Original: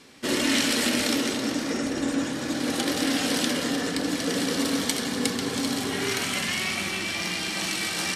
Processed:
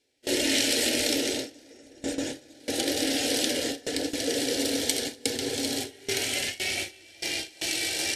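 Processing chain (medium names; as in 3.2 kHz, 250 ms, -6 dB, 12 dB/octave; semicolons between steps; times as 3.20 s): static phaser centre 470 Hz, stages 4; gate with hold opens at -19 dBFS; trim +1.5 dB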